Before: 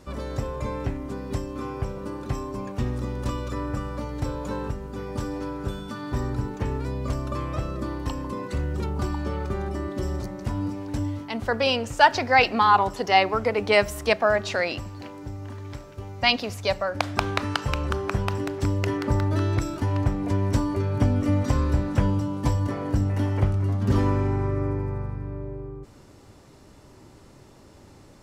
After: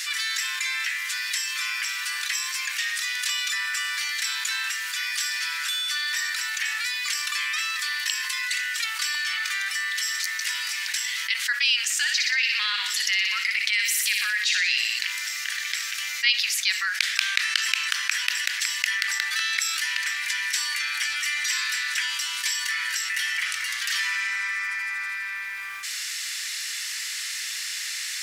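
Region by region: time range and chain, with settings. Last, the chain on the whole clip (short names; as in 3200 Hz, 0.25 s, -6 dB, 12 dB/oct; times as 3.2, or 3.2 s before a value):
11.93–14.99 compressor, threshold -24 dBFS + thin delay 60 ms, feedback 61%, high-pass 2100 Hz, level -5 dB
whole clip: elliptic high-pass 1800 Hz, stop band 70 dB; fast leveller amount 70%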